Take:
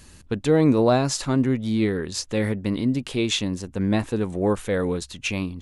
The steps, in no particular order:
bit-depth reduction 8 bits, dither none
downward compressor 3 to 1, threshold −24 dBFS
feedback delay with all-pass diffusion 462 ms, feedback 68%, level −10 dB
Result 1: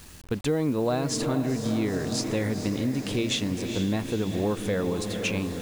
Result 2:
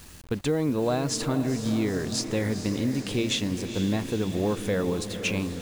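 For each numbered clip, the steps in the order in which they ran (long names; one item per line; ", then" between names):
feedback delay with all-pass diffusion, then downward compressor, then bit-depth reduction
downward compressor, then bit-depth reduction, then feedback delay with all-pass diffusion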